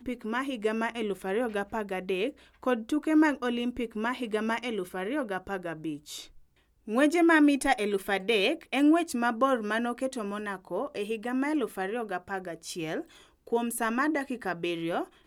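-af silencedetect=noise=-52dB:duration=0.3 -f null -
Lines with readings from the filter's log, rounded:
silence_start: 6.42
silence_end: 6.87 | silence_duration: 0.45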